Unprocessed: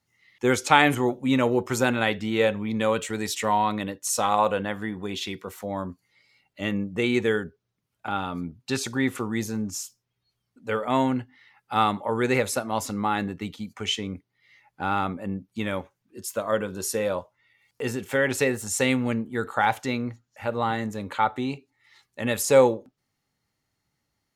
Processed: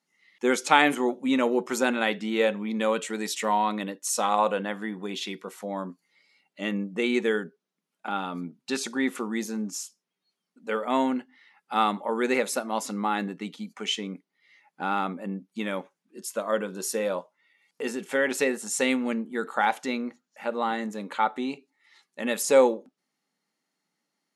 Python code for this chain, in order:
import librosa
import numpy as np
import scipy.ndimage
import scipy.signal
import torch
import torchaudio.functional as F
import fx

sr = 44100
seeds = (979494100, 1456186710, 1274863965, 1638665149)

y = fx.brickwall_bandpass(x, sr, low_hz=160.0, high_hz=12000.0)
y = y * librosa.db_to_amplitude(-1.5)